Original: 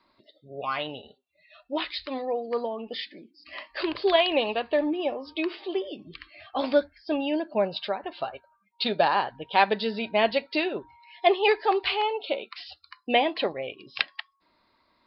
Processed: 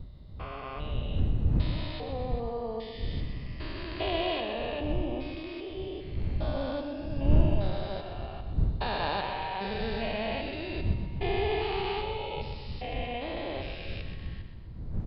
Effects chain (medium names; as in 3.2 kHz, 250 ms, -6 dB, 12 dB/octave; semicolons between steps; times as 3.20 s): spectrogram pixelated in time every 400 ms; wind noise 88 Hz -30 dBFS; feedback delay 126 ms, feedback 51%, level -8 dB; trim -2.5 dB